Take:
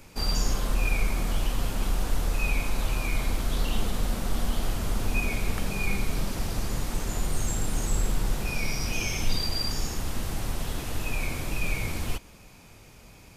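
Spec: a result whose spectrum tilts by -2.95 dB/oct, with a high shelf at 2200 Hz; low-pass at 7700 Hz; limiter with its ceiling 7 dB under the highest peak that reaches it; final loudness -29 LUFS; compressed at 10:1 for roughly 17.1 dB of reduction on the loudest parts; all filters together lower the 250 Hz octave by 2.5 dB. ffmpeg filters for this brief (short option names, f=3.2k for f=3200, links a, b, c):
-af "lowpass=7.7k,equalizer=f=250:t=o:g=-3.5,highshelf=f=2.2k:g=6,acompressor=threshold=-37dB:ratio=10,volume=16.5dB,alimiter=limit=-17.5dB:level=0:latency=1"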